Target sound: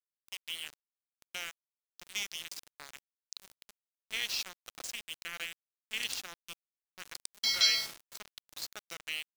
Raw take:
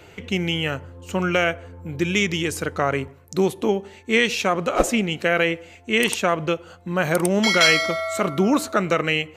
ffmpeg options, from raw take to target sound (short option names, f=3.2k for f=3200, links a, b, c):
-af "bandpass=f=4.7k:t=q:w=3.6:csg=0,aeval=exprs='val(0)*gte(abs(val(0)),0.0168)':c=same"